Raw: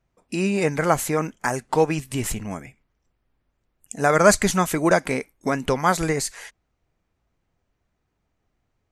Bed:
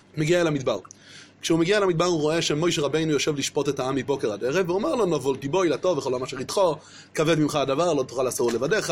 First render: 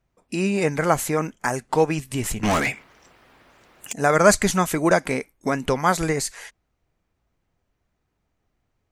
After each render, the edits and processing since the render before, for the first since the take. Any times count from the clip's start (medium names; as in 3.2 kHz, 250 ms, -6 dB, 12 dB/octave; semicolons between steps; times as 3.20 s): 2.43–3.93 s: overdrive pedal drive 35 dB, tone 4.7 kHz, clips at -12 dBFS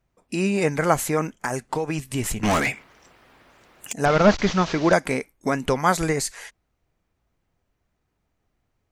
1.26–2.05 s: compression 12:1, threshold -20 dBFS; 4.05–4.93 s: one-bit delta coder 32 kbps, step -28 dBFS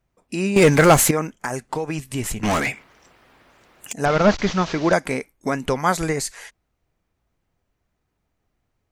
0.56–1.11 s: waveshaping leveller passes 3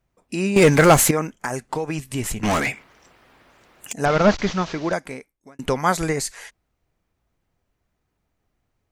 4.27–5.59 s: fade out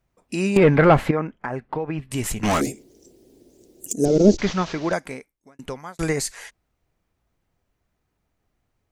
0.57–2.11 s: distance through air 420 m; 2.61–4.38 s: FFT filter 160 Hz 0 dB, 370 Hz +12 dB, 1.2 kHz -29 dB, 2.4 kHz -19 dB, 6.5 kHz +5 dB; 5.11–5.99 s: fade out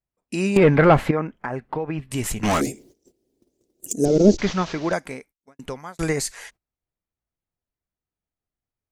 gate -49 dBFS, range -18 dB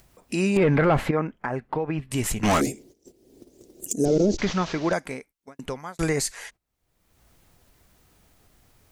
upward compressor, threshold -34 dBFS; peak limiter -12.5 dBFS, peak gain reduction 10 dB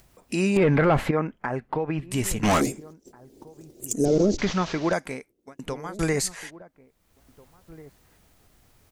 echo from a far wall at 290 m, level -20 dB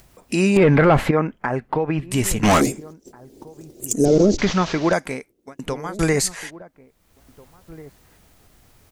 trim +5.5 dB